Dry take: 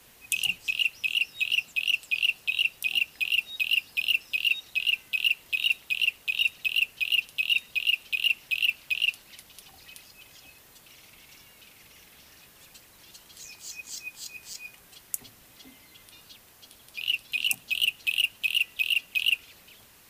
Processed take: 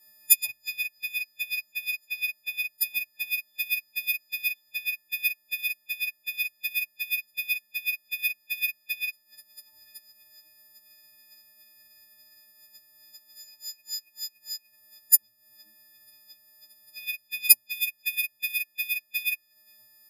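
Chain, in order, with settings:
every partial snapped to a pitch grid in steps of 6 semitones
EQ curve with evenly spaced ripples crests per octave 1.3, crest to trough 14 dB
transient designer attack +7 dB, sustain −10 dB
on a send: backwards echo 31 ms −23.5 dB
on the sum: expander for the loud parts 1.5 to 1, over −30 dBFS
level −7 dB

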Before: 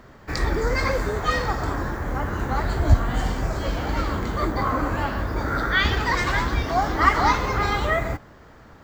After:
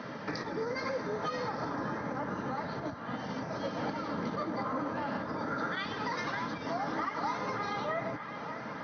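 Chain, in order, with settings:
downward compressor 12 to 1, threshold −35 dBFS, peak gain reduction 26 dB
on a send: delay with a band-pass on its return 605 ms, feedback 73%, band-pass 1,500 Hz, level −11.5 dB
on the sum: dynamic equaliser 2,600 Hz, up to −6 dB, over −54 dBFS, Q 0.92
low-pass filter 7,900 Hz 12 dB per octave
notch comb filter 370 Hz
brickwall limiter −32.5 dBFS, peak gain reduction 5.5 dB
high-pass filter 150 Hz 24 dB per octave
level +9 dB
AC-3 48 kbit/s 44,100 Hz

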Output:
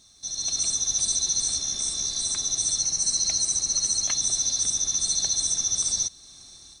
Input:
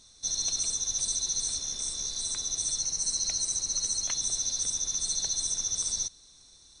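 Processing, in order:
in parallel at −2.5 dB: downward compressor, threshold −44 dBFS, peak gain reduction 17 dB
on the sum: notch comb filter 490 Hz
automatic gain control gain up to 8.5 dB
bit-depth reduction 12 bits, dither none
level −3.5 dB

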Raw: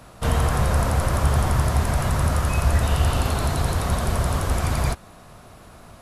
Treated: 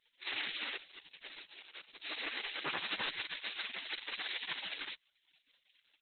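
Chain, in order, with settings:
0:00.76–0:02.02: first-order pre-emphasis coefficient 0.8
gate on every frequency bin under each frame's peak −30 dB weak
0:02.63–0:03.07: notch filter 6,600 Hz, Q 15
0:04.12–0:04.53: high-shelf EQ 8,800 Hz → 5,100 Hz +9 dB
level +3 dB
Opus 8 kbit/s 48,000 Hz

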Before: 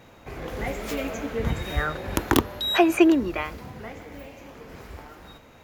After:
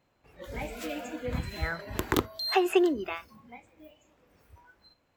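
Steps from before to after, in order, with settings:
noise reduction from a noise print of the clip's start 15 dB
speed change +9%
level −6 dB

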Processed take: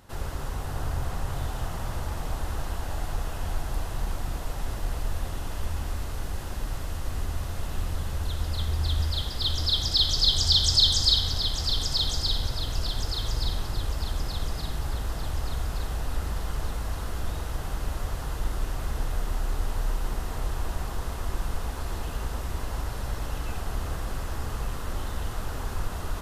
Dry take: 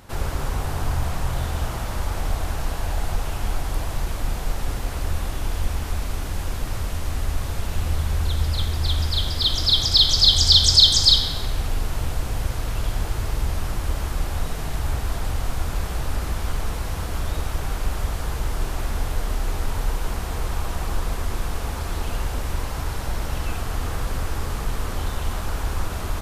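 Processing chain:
notch filter 2,300 Hz, Q 14
on a send: delay that swaps between a low-pass and a high-pass 586 ms, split 1,700 Hz, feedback 66%, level −3.5 dB
on the sum: level −7 dB

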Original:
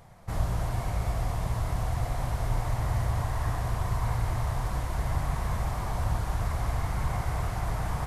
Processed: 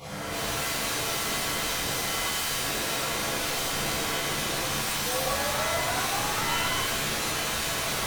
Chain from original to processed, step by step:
time-frequency cells dropped at random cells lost 24%
parametric band 2,800 Hz −4 dB 2.1 octaves
in parallel at −3 dB: compressor whose output falls as the input rises −37 dBFS, ratio −1
on the sum: meter weighting curve D
brickwall limiter −29 dBFS, peak gain reduction 10 dB
on a send: flutter between parallel walls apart 4.4 metres, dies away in 0.39 s
on the sum: wave folding −37.5 dBFS
sound drawn into the spectrogram rise, 0:05.04–0:06.80, 490–1,100 Hz −46 dBFS
reverb with rising layers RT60 1.1 s, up +7 semitones, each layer −2 dB, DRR −10 dB

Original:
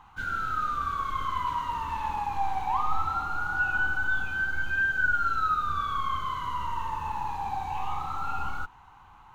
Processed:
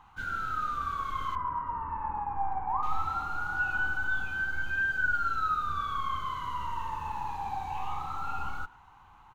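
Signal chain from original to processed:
0:01.35–0:02.83: low-pass filter 1,600 Hz 24 dB per octave
far-end echo of a speakerphone 110 ms, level −21 dB
level −3 dB

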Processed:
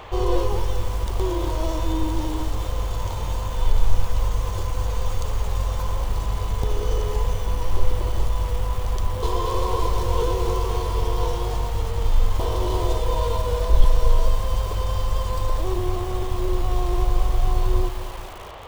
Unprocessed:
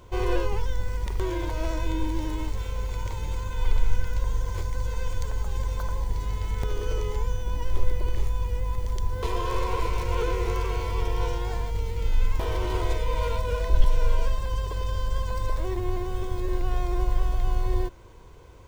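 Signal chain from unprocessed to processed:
noise in a band 430–2,500 Hz −41 dBFS
flat-topped bell 1,900 Hz −12.5 dB 1.1 octaves
feedback echo at a low word length 219 ms, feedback 55%, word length 6 bits, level −10.5 dB
level +4 dB

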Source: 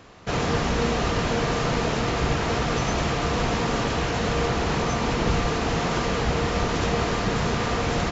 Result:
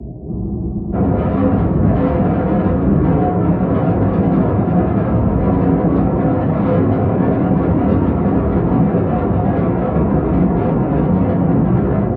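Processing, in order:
wind on the microphone 170 Hz −24 dBFS
elliptic low-pass filter 690 Hz, stop band 50 dB
dynamic equaliser 140 Hz, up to +3 dB, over −31 dBFS, Q 0.85
brickwall limiter −14.5 dBFS, peak gain reduction 14 dB
automatic gain control gain up to 6.5 dB
soft clipping −21.5 dBFS, distortion −8 dB
time stretch by phase vocoder 1.5×
frequency shifter +42 Hz
on a send: single-tap delay 354 ms −11.5 dB
on the sum: rectangular room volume 540 cubic metres, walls furnished, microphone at 3 metres
frozen spectrum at 0:00.32, 0.61 s
level +6 dB

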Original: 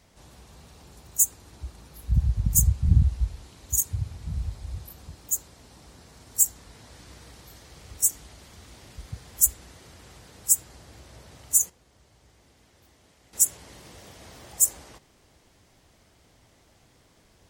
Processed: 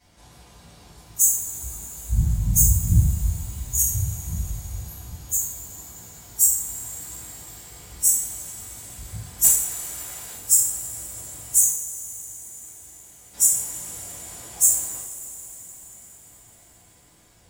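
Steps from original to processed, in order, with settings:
peak hold with a decay on every bin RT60 0.53 s
0:09.44–0:10.36: mid-hump overdrive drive 11 dB, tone 6,400 Hz, clips at −1.5 dBFS
coupled-rooms reverb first 0.25 s, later 4.9 s, from −22 dB, DRR −9 dB
level −8.5 dB

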